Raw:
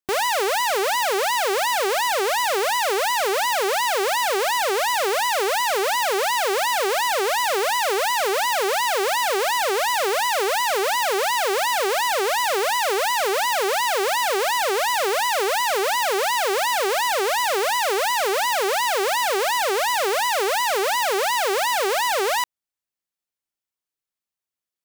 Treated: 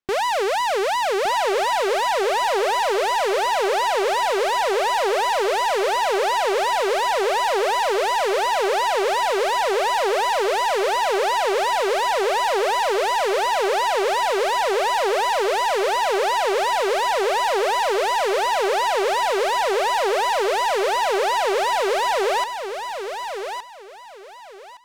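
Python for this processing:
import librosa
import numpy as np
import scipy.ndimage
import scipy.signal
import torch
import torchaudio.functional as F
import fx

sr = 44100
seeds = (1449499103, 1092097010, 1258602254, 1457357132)

p1 = scipy.signal.sosfilt(scipy.signal.bessel(2, 3500.0, 'lowpass', norm='mag', fs=sr, output='sos'), x)
p2 = fx.low_shelf(p1, sr, hz=88.0, db=3.0)
p3 = 10.0 ** (-25.0 / 20.0) * (np.abs((p2 / 10.0 ** (-25.0 / 20.0) + 3.0) % 4.0 - 2.0) - 1.0)
p4 = p2 + (p3 * 10.0 ** (-5.0 / 20.0))
y = fx.echo_feedback(p4, sr, ms=1165, feedback_pct=24, wet_db=-8)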